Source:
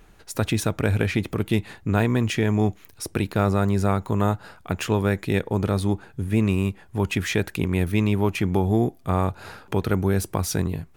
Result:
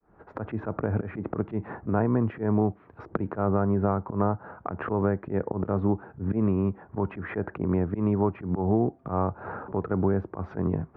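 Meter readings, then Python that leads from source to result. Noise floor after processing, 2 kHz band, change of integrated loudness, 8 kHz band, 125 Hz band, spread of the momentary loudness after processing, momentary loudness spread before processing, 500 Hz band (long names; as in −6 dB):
−56 dBFS, −11.0 dB, −4.0 dB, below −40 dB, −6.0 dB, 9 LU, 7 LU, −2.5 dB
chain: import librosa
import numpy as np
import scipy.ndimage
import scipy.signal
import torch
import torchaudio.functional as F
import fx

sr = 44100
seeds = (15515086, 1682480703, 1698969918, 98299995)

y = fx.fade_in_head(x, sr, length_s=1.77)
y = fx.recorder_agc(y, sr, target_db=-11.5, rise_db_per_s=15.0, max_gain_db=30)
y = scipy.signal.sosfilt(scipy.signal.butter(4, 1300.0, 'lowpass', fs=sr, output='sos'), y)
y = fx.auto_swell(y, sr, attack_ms=137.0)
y = fx.highpass(y, sr, hz=160.0, slope=6)
y = fx.band_squash(y, sr, depth_pct=70)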